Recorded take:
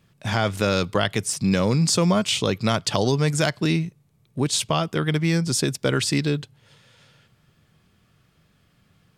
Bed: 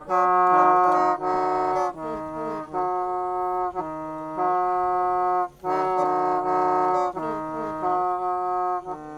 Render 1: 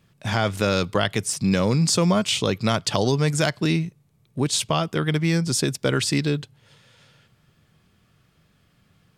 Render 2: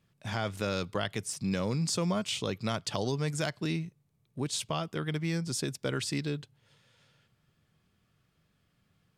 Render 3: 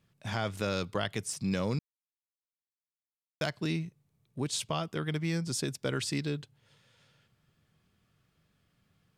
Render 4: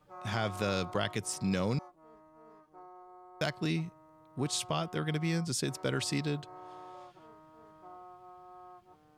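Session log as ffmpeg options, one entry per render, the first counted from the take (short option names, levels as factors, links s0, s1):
-af anull
-af "volume=0.299"
-filter_complex "[0:a]asplit=3[s0][s1][s2];[s0]atrim=end=1.79,asetpts=PTS-STARTPTS,afade=t=out:st=1.786:d=0.004:c=hsin[s3];[s1]atrim=start=1.79:end=3.41,asetpts=PTS-STARTPTS,volume=0[s4];[s2]atrim=start=3.41,asetpts=PTS-STARTPTS,afade=t=in:d=0.004:c=hsin[s5];[s3][s4][s5]concat=n=3:v=0:a=1"
-filter_complex "[1:a]volume=0.0447[s0];[0:a][s0]amix=inputs=2:normalize=0"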